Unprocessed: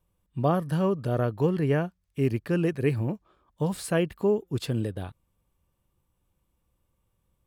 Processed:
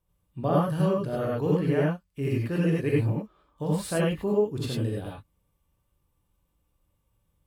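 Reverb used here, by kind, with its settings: gated-style reverb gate 120 ms rising, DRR -4 dB; trim -5 dB

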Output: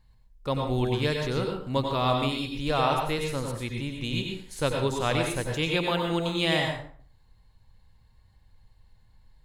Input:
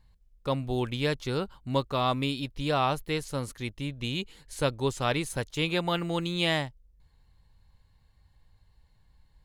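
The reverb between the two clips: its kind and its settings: plate-style reverb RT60 0.51 s, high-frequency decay 0.7×, pre-delay 80 ms, DRR 1.5 dB

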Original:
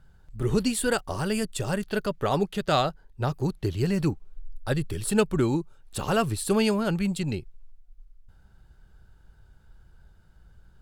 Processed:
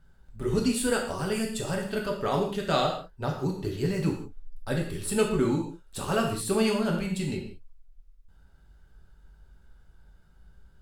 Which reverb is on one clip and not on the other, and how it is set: gated-style reverb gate 210 ms falling, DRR -0.5 dB; trim -4.5 dB

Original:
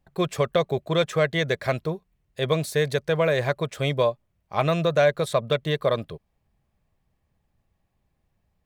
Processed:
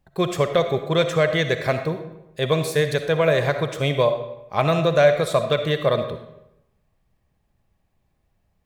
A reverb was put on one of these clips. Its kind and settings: algorithmic reverb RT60 0.88 s, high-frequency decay 0.75×, pre-delay 20 ms, DRR 7.5 dB; trim +2.5 dB

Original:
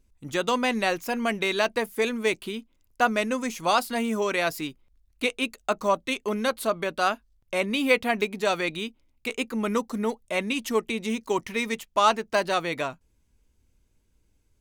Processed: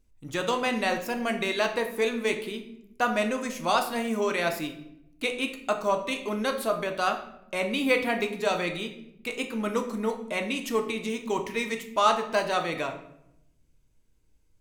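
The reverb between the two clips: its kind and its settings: simulated room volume 200 m³, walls mixed, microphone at 0.56 m; trim -3 dB

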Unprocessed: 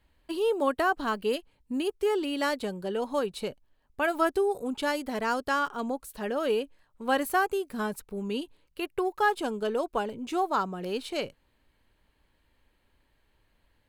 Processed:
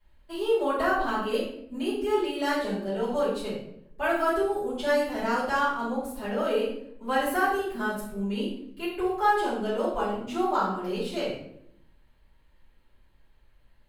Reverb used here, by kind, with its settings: simulated room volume 150 m³, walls mixed, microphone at 4.8 m; trim -13 dB

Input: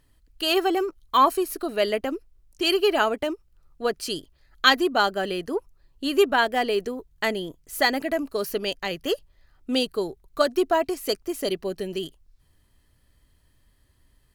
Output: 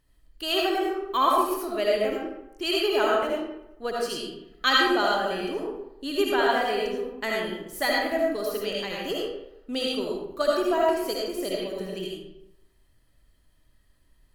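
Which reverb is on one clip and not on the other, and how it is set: algorithmic reverb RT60 0.85 s, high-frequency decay 0.65×, pre-delay 35 ms, DRR -3.5 dB; trim -6.5 dB

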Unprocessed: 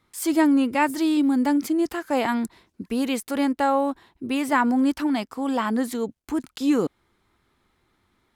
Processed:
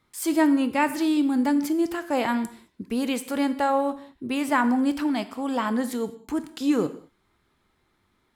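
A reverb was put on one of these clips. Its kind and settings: gated-style reverb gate 240 ms falling, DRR 10.5 dB; trim -1.5 dB

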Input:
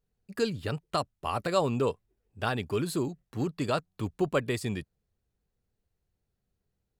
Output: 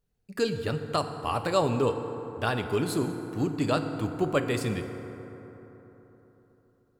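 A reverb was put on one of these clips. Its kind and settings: FDN reverb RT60 3.9 s, high-frequency decay 0.4×, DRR 6.5 dB; trim +1.5 dB

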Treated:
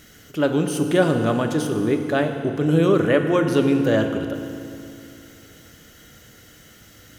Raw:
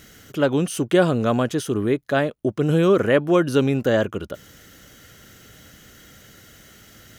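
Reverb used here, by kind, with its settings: FDN reverb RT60 2.6 s, low-frequency decay 1.25×, high-frequency decay 0.85×, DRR 5 dB; trim -1.5 dB

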